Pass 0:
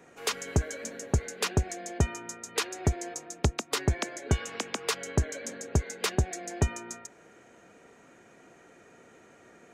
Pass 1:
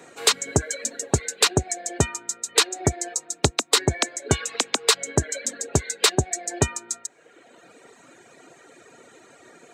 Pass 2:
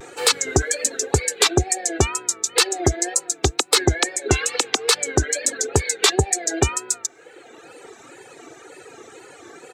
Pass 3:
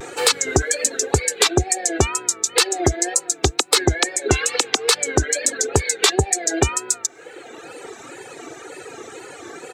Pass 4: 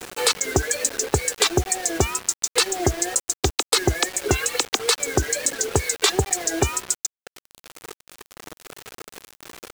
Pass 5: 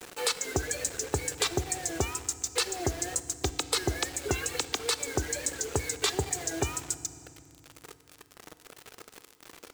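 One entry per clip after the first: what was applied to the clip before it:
HPF 130 Hz 12 dB/oct; reverb removal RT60 1.3 s; thirty-one-band EQ 200 Hz -8 dB, 4000 Hz +9 dB, 8000 Hz +9 dB; gain +8.5 dB
comb 2.4 ms, depth 59%; limiter -10 dBFS, peak gain reduction 9 dB; wow and flutter 110 cents; gain +6 dB
compressor 1.5:1, threshold -28 dBFS, peak gain reduction 6.5 dB; gain +6 dB
bit-crush 5-bit; gain -3 dB
FDN reverb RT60 2.5 s, low-frequency decay 1.55×, high-frequency decay 0.75×, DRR 12.5 dB; gain -9 dB

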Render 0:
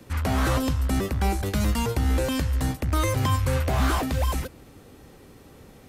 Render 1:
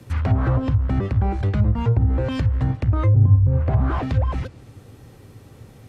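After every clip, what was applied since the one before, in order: bell 110 Hz +15 dB 0.57 oct; treble ducked by the level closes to 380 Hz, closed at -11.5 dBFS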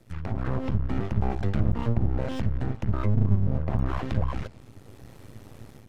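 AGC gain up to 11 dB; half-wave rectifier; gain -8.5 dB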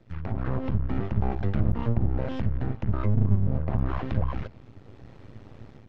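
air absorption 170 m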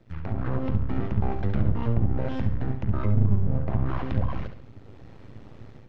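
flutter echo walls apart 11.8 m, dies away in 0.45 s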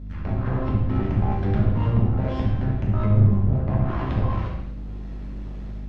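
hum 50 Hz, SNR 15 dB; non-linear reverb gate 0.3 s falling, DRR -2 dB

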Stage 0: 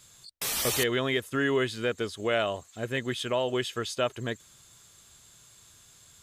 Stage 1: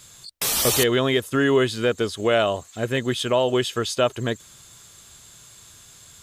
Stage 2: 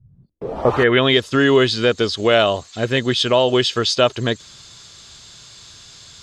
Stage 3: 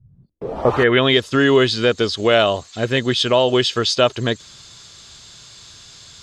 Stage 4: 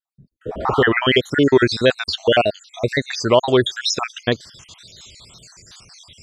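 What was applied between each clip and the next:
dynamic EQ 2000 Hz, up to -5 dB, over -42 dBFS, Q 1.6; gain +8 dB
low-pass sweep 110 Hz -> 4900 Hz, 0.03–1.18; gain +4.5 dB
nothing audible
random spectral dropouts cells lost 61%; wow and flutter 100 cents; gain +2.5 dB

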